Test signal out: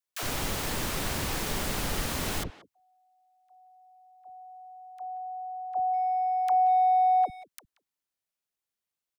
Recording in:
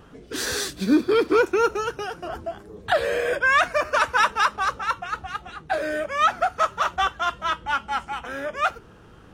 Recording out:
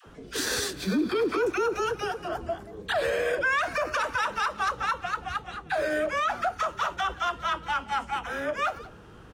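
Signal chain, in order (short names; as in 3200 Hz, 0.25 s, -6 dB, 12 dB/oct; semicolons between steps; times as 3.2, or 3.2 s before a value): dispersion lows, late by 68 ms, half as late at 490 Hz; limiter -18.5 dBFS; speakerphone echo 0.18 s, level -16 dB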